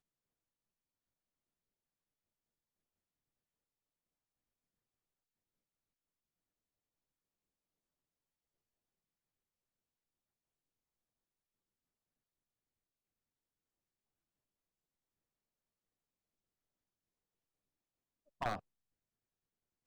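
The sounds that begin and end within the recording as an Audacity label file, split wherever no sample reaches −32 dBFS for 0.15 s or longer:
18.420000	18.560000	sound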